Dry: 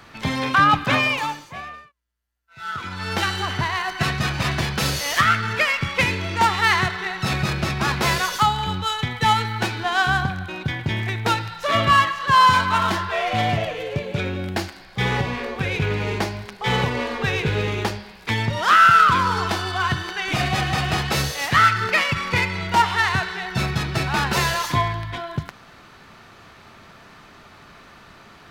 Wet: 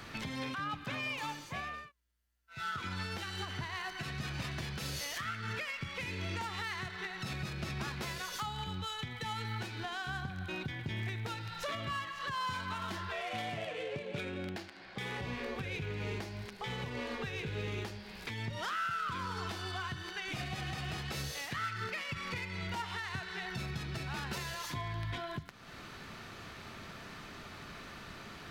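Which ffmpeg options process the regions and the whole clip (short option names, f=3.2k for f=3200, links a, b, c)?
-filter_complex "[0:a]asettb=1/sr,asplit=3[a][b][c];[a]atrim=end=13.214[d];[b]atrim=start=13.21:end=15.22,asetpts=PTS-STARTPTS,afade=t=in:d=0.004:c=qsin,afade=t=out:st=2.006:d=0.004:c=qsin,highpass=f=280:p=1,adynamicsmooth=sensitivity=4.5:basefreq=3.4k[e];[c]atrim=start=15.216[f];[d][e]acrossfade=d=0.004:c1=hsin:c2=qsin[g];[g][f]acrossfade=d=0.004:c1=qsin:c2=hsin,equalizer=f=900:t=o:w=1.5:g=-4.5,acompressor=threshold=-39dB:ratio=2,alimiter=level_in=4.5dB:limit=-24dB:level=0:latency=1:release=330,volume=-4.5dB"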